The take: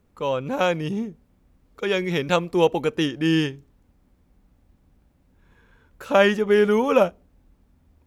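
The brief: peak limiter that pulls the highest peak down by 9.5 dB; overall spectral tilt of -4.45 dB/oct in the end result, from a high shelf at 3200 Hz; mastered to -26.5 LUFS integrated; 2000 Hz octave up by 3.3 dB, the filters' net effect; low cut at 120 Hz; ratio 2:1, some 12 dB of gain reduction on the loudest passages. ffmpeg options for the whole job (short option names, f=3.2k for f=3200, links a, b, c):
-af "highpass=120,equalizer=f=2k:t=o:g=7,highshelf=f=3.2k:g=-8.5,acompressor=threshold=-34dB:ratio=2,volume=7dB,alimiter=limit=-15.5dB:level=0:latency=1"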